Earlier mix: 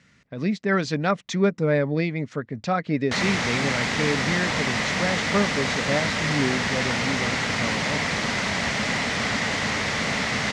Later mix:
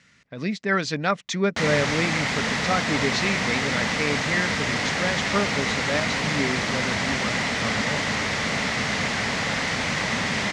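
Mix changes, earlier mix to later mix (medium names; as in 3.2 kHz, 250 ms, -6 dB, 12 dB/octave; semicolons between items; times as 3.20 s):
speech: add tilt shelf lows -3.5 dB, about 890 Hz; background: entry -1.55 s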